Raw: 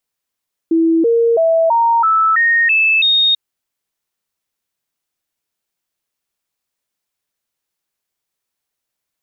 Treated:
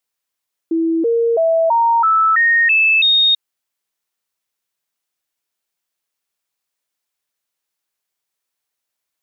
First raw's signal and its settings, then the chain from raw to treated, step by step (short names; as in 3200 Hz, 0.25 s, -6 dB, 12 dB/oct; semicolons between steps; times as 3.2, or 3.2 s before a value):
stepped sine 328 Hz up, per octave 2, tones 8, 0.33 s, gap 0.00 s -9.5 dBFS
low shelf 330 Hz -8 dB